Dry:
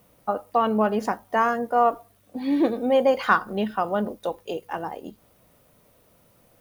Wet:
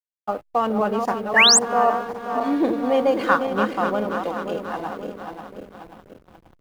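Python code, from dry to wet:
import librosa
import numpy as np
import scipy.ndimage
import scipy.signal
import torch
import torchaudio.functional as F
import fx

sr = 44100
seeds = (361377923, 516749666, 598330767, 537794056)

y = fx.reverse_delay_fb(x, sr, ms=267, feedback_pct=73, wet_db=-6.0)
y = fx.spec_paint(y, sr, seeds[0], shape='rise', start_s=1.36, length_s=0.23, low_hz=1600.0, high_hz=8800.0, level_db=-13.0)
y = fx.backlash(y, sr, play_db=-35.0)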